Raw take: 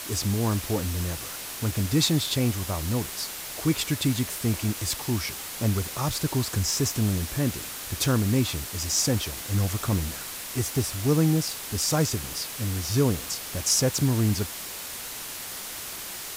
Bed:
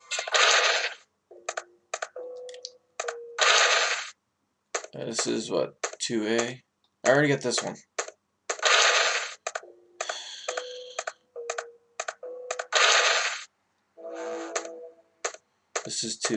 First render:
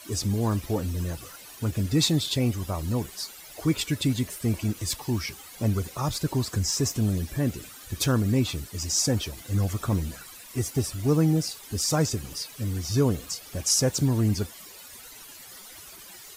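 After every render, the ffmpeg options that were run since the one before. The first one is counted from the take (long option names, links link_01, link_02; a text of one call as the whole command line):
ffmpeg -i in.wav -af "afftdn=noise_reduction=14:noise_floor=-37" out.wav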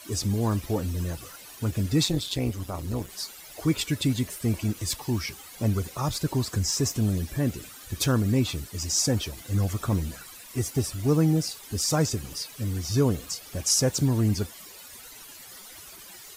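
ffmpeg -i in.wav -filter_complex "[0:a]asettb=1/sr,asplit=3[link_01][link_02][link_03];[link_01]atrim=end=2.034[link_04];[link_02]atrim=start=2.03:end=3.1,asetpts=PTS-STARTPTS,afade=type=in:duration=0.004:curve=qsin,afade=type=out:start_time=1.066:duration=0.004:curve=qsin,tremolo=f=190:d=0.71[link_05];[link_03]atrim=start=3.096[link_06];[link_04][link_05]acrossfade=duration=0.004:curve1=hsin:curve2=qsin[link_07];[link_07][link_06]acrossfade=duration=0.004:curve1=qsin:curve2=hsin" out.wav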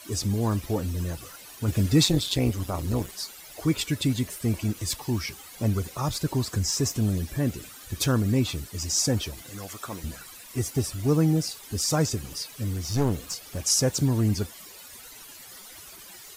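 ffmpeg -i in.wav -filter_complex "[0:a]asettb=1/sr,asplit=3[link_01][link_02][link_03];[link_01]atrim=end=9.494[link_04];[link_02]atrim=start=9.49:end=10.04,asetpts=PTS-STARTPTS,afade=type=in:duration=0.004:curve=qsin,afade=type=out:start_time=0.546:duration=0.004:curve=qsin,highpass=frequency=810:poles=1[link_05];[link_03]atrim=start=10.036[link_06];[link_04][link_05]acrossfade=duration=0.004:curve1=hsin:curve2=qsin[link_07];[link_07][link_06]acrossfade=duration=0.004:curve1=qsin:curve2=hsin,asettb=1/sr,asplit=3[link_08][link_09][link_10];[link_08]atrim=end=12.744[link_11];[link_09]atrim=start=12.74:end=13.61,asetpts=PTS-STARTPTS,afade=type=in:duration=0.004:curve=qsin,afade=type=out:start_time=0.866:duration=0.004:curve=qsin,aeval=exprs='clip(val(0),-1,0.0398)':channel_layout=same[link_12];[link_10]atrim=start=13.606[link_13];[link_11][link_12]acrossfade=duration=0.004:curve1=hsin:curve2=qsin[link_14];[link_14][link_13]acrossfade=duration=0.004:curve1=qsin:curve2=hsin,asplit=3[link_15][link_16][link_17];[link_15]atrim=end=1.682[link_18];[link_16]atrim=start=1.678:end=3.112,asetpts=PTS-STARTPTS,volume=3.5dB[link_19];[link_17]atrim=start=3.108[link_20];[link_18][link_19]acrossfade=duration=0.004:curve1=hsin:curve2=hsin[link_21];[link_21][link_20]acrossfade=duration=0.004:curve1=hsin:curve2=hsin" out.wav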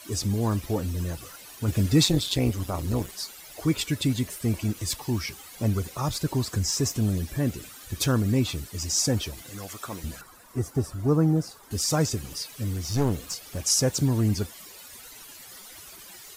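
ffmpeg -i in.wav -filter_complex "[0:a]asettb=1/sr,asplit=3[link_01][link_02][link_03];[link_01]atrim=end=10.214[link_04];[link_02]atrim=start=10.21:end=11.71,asetpts=PTS-STARTPTS,afade=type=in:duration=0.004:curve=qsin,afade=type=out:start_time=1.496:duration=0.004:curve=qsin,highshelf=frequency=1800:width_type=q:width=1.5:gain=-9[link_05];[link_03]atrim=start=11.706[link_06];[link_04][link_05]acrossfade=duration=0.004:curve1=hsin:curve2=qsin[link_07];[link_07][link_06]acrossfade=duration=0.004:curve1=qsin:curve2=hsin" out.wav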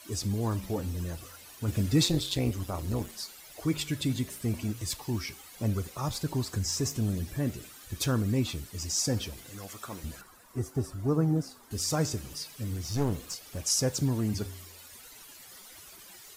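ffmpeg -i in.wav -af "flanger=delay=9.1:depth=8.3:regen=-87:speed=0.37:shape=sinusoidal" out.wav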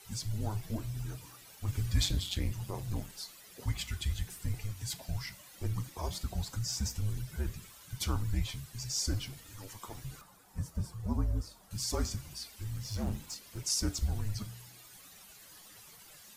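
ffmpeg -i in.wav -af "flanger=delay=6.6:depth=2.5:regen=-80:speed=0.15:shape=triangular,afreqshift=-210" out.wav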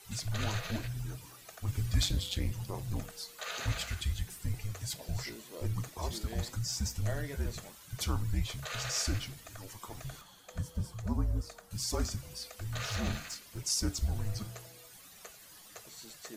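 ffmpeg -i in.wav -i bed.wav -filter_complex "[1:a]volume=-20dB[link_01];[0:a][link_01]amix=inputs=2:normalize=0" out.wav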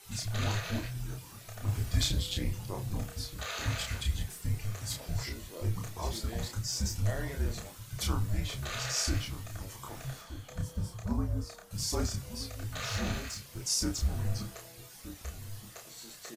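ffmpeg -i in.wav -filter_complex "[0:a]asplit=2[link_01][link_02];[link_02]adelay=30,volume=-3.5dB[link_03];[link_01][link_03]amix=inputs=2:normalize=0,asplit=2[link_04][link_05];[link_05]adelay=1224,volume=-12dB,highshelf=frequency=4000:gain=-27.6[link_06];[link_04][link_06]amix=inputs=2:normalize=0" out.wav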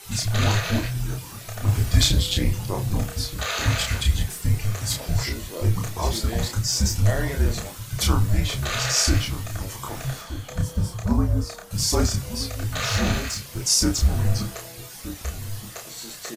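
ffmpeg -i in.wav -af "volume=11dB" out.wav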